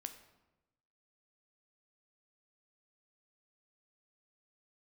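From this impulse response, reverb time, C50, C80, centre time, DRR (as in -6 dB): 1.0 s, 11.0 dB, 13.0 dB, 12 ms, 7.5 dB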